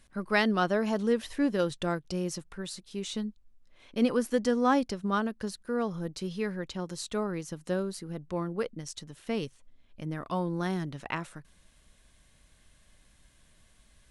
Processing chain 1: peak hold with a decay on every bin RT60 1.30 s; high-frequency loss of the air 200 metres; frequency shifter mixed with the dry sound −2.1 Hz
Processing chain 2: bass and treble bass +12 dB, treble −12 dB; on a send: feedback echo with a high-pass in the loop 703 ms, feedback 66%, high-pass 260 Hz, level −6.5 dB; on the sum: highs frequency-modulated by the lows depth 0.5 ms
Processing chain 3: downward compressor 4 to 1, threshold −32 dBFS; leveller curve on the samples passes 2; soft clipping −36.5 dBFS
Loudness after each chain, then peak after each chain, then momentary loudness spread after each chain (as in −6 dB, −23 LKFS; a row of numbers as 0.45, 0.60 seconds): −33.0, −26.5, −40.0 LKFS; −14.5, −9.5, −36.5 dBFS; 15, 16, 4 LU